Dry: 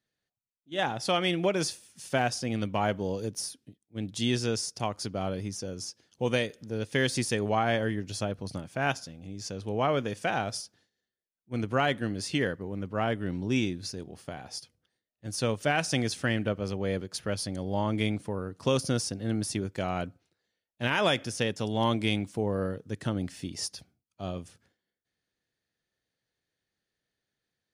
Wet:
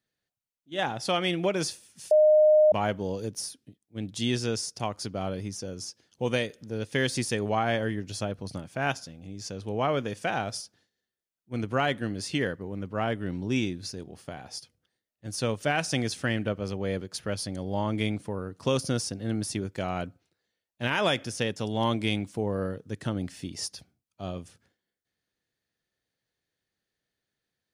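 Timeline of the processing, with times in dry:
0:02.11–0:02.72: beep over 613 Hz −15 dBFS

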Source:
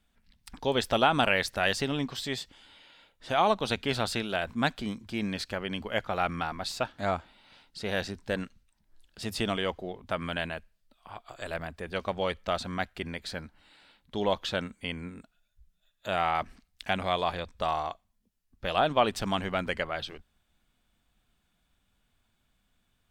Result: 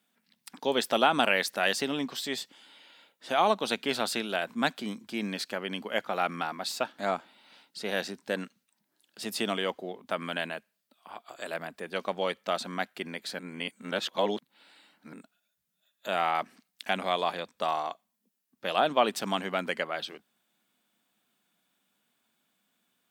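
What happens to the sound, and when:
0:13.39–0:15.13: reverse
whole clip: high-pass filter 190 Hz 24 dB per octave; high-shelf EQ 11,000 Hz +10 dB

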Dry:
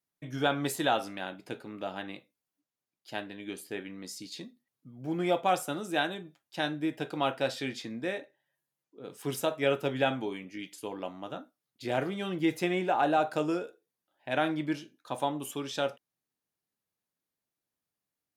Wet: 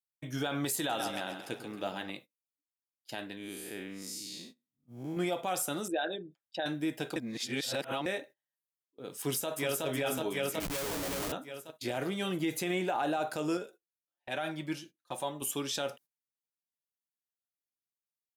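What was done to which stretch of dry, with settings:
0:00.76–0:02.10: echo with a time of its own for lows and highs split 470 Hz, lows 99 ms, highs 134 ms, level −11 dB
0:03.37–0:05.17: spectrum smeared in time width 169 ms
0:05.88–0:06.66: spectral envelope exaggerated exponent 2
0:07.16–0:08.06: reverse
0:09.19–0:09.85: delay throw 370 ms, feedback 60%, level 0 dB
0:10.60–0:11.32: comparator with hysteresis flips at −45 dBFS
0:12.22–0:12.97: notch filter 5,300 Hz
0:13.57–0:15.42: flanger 1.1 Hz, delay 4.9 ms, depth 1.2 ms, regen +24%
whole clip: noise gate −51 dBFS, range −19 dB; high-shelf EQ 5,100 Hz +11.5 dB; brickwall limiter −23 dBFS

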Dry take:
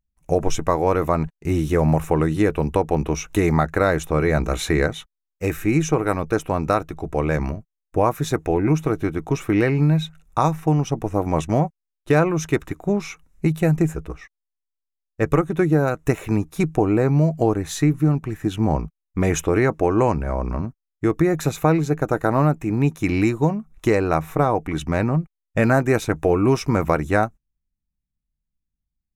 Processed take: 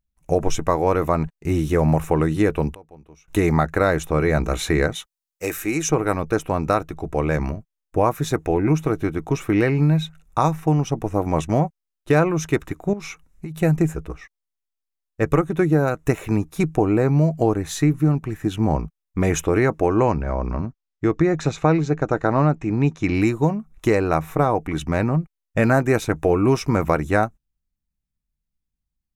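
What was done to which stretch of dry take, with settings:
0:02.70–0:03.28: gate with flip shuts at −24 dBFS, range −25 dB
0:04.95–0:05.90: bass and treble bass −12 dB, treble +7 dB
0:12.93–0:13.57: downward compressor 16 to 1, threshold −27 dBFS
0:19.98–0:23.15: low-pass filter 6,600 Hz 24 dB per octave

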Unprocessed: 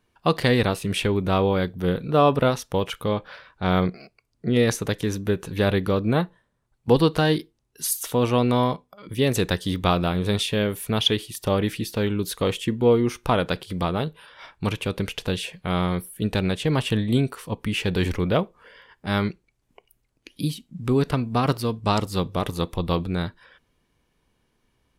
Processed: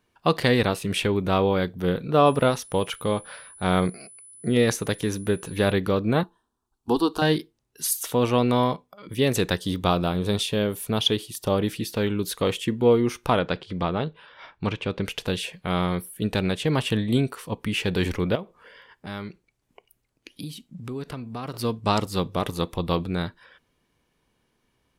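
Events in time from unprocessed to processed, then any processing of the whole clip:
0:02.25–0:05.71: steady tone 10,000 Hz −45 dBFS
0:06.23–0:07.22: phaser with its sweep stopped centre 550 Hz, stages 6
0:09.57–0:11.79: parametric band 2,000 Hz −5.5 dB 0.96 octaves
0:13.39–0:15.05: high-frequency loss of the air 120 metres
0:18.35–0:21.54: downward compressor 2.5 to 1, threshold −34 dBFS
whole clip: low-shelf EQ 77 Hz −7.5 dB

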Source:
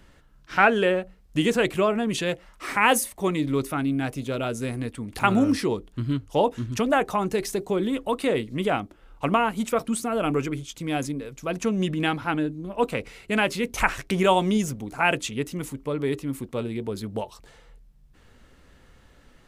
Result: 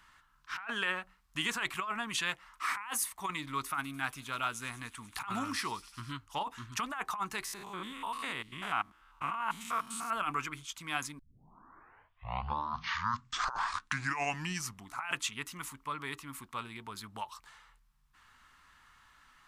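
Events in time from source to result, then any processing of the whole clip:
0:03.54–0:06.12: delay with a high-pass on its return 98 ms, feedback 83%, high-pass 4,900 Hz, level −13 dB
0:07.44–0:10.13: spectrum averaged block by block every 100 ms
0:11.19: tape start 3.94 s
whole clip: low shelf with overshoot 740 Hz −13 dB, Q 3; compressor whose output falls as the input rises −27 dBFS, ratio −1; level −7 dB

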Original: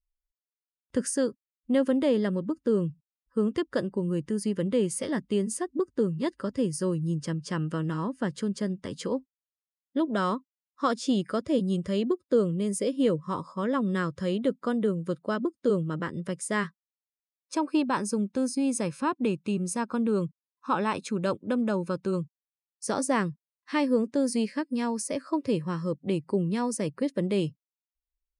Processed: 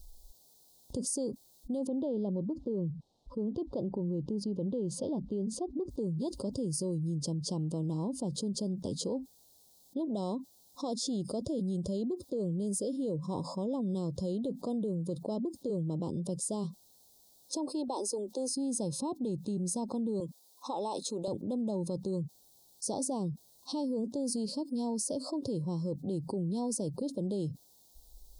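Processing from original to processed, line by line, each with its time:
0:01.87–0:05.89: low-pass filter 2,700 Hz
0:17.69–0:18.56: Butterworth high-pass 310 Hz
0:20.20–0:21.28: high-pass filter 450 Hz
whole clip: brickwall limiter −22 dBFS; Chebyshev band-stop filter 830–3,900 Hz, order 3; envelope flattener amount 70%; level −5.5 dB

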